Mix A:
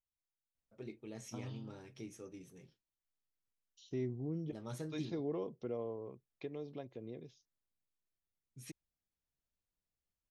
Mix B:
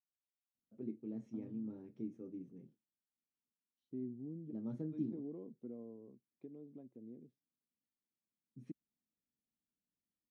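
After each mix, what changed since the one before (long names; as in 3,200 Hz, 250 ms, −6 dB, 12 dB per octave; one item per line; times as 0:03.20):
first voice +9.5 dB
master: add resonant band-pass 240 Hz, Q 3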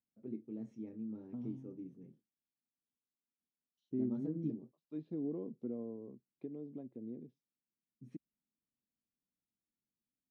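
first voice: entry −0.55 s
second voice +7.0 dB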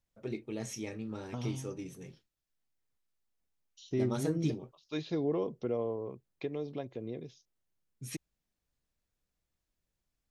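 master: remove resonant band-pass 240 Hz, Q 3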